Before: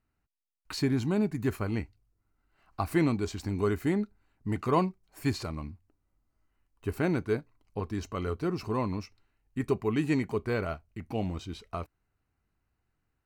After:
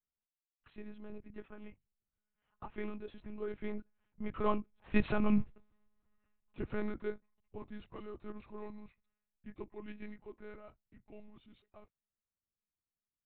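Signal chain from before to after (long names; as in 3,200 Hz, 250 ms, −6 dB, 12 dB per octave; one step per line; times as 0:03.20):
source passing by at 0:05.42, 20 m/s, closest 1.5 metres
one-pitch LPC vocoder at 8 kHz 210 Hz
level +17 dB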